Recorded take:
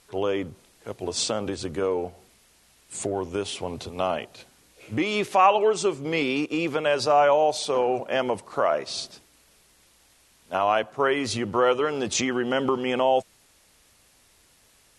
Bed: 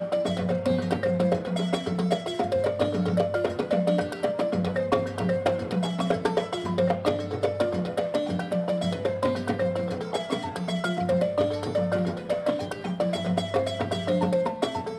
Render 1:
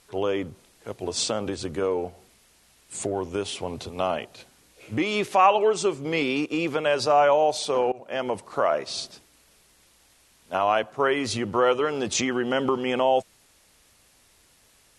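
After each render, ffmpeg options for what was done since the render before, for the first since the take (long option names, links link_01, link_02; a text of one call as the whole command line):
ffmpeg -i in.wav -filter_complex "[0:a]asplit=2[link_01][link_02];[link_01]atrim=end=7.92,asetpts=PTS-STARTPTS,afade=type=out:start_time=7.916:duration=0.004:curve=hsin:silence=0.0794328[link_03];[link_02]atrim=start=7.92,asetpts=PTS-STARTPTS,afade=type=in:duration=0.63:curve=qsin:silence=0.0794328[link_04];[link_03][link_04]concat=n=2:v=0:a=1" out.wav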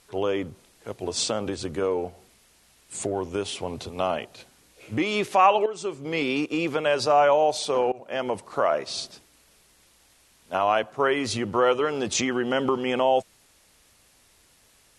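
ffmpeg -i in.wav -filter_complex "[0:a]asplit=2[link_01][link_02];[link_01]atrim=end=5.66,asetpts=PTS-STARTPTS,afade=type=out:start_time=5.656:duration=0.004:curve=hsin:silence=0.237137[link_03];[link_02]atrim=start=5.66,asetpts=PTS-STARTPTS,afade=type=in:duration=0.66:silence=0.237137[link_04];[link_03][link_04]concat=n=2:v=0:a=1" out.wav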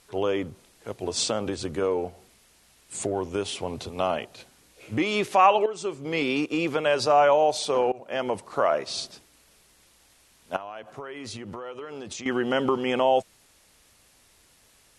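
ffmpeg -i in.wav -filter_complex "[0:a]asettb=1/sr,asplit=3[link_01][link_02][link_03];[link_01]atrim=end=10.564[link_04];[link_02]atrim=start=10.56:end=12.26,asetpts=PTS-STARTPTS,afade=type=in:duration=0.004:curve=qsin,afade=type=out:start_time=1.696:duration=0.004:curve=qsin,acompressor=threshold=-33dB:ratio=16:attack=3.2:release=140:knee=1:detection=peak[link_05];[link_03]atrim=start=12.256[link_06];[link_04][link_05]acrossfade=duration=0.004:curve1=hsin:curve2=qsin[link_07];[link_07][link_06]acrossfade=duration=0.004:curve1=qsin:curve2=hsin" out.wav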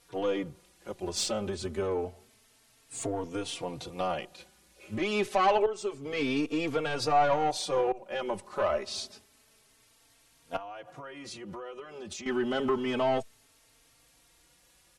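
ffmpeg -i in.wav -filter_complex "[0:a]aeval=exprs='(tanh(5.62*val(0)+0.35)-tanh(0.35))/5.62':channel_layout=same,asplit=2[link_01][link_02];[link_02]adelay=3.8,afreqshift=0.28[link_03];[link_01][link_03]amix=inputs=2:normalize=1" out.wav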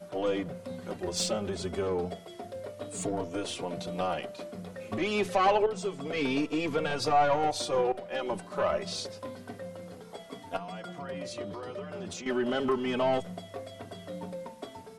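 ffmpeg -i in.wav -i bed.wav -filter_complex "[1:a]volume=-15.5dB[link_01];[0:a][link_01]amix=inputs=2:normalize=0" out.wav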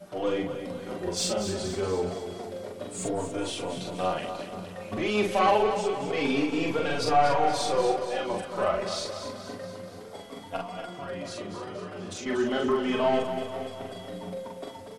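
ffmpeg -i in.wav -filter_complex "[0:a]asplit=2[link_01][link_02];[link_02]adelay=43,volume=-2.5dB[link_03];[link_01][link_03]amix=inputs=2:normalize=0,aecho=1:1:238|476|714|952|1190|1428|1666:0.355|0.199|0.111|0.0623|0.0349|0.0195|0.0109" out.wav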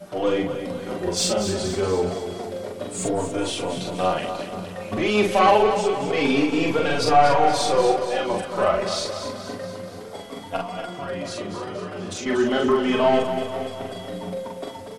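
ffmpeg -i in.wav -af "volume=6dB" out.wav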